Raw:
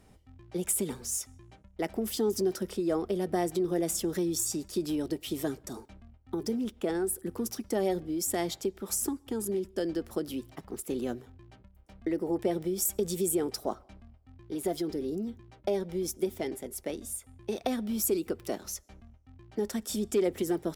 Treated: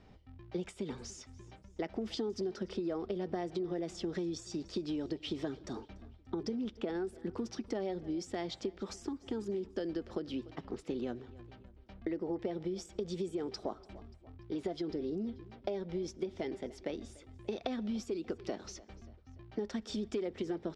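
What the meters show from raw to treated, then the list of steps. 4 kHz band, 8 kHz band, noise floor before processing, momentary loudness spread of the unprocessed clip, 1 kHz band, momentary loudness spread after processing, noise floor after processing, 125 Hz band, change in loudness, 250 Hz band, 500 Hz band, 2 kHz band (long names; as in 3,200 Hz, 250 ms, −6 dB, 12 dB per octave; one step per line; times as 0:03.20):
−5.0 dB, −19.0 dB, −59 dBFS, 9 LU, −7.0 dB, 13 LU, −58 dBFS, −5.0 dB, −7.0 dB, −5.5 dB, −6.5 dB, −5.5 dB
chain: repeating echo 291 ms, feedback 47%, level −24 dB
downward compressor, threshold −33 dBFS, peak gain reduction 11 dB
low-pass filter 5,000 Hz 24 dB per octave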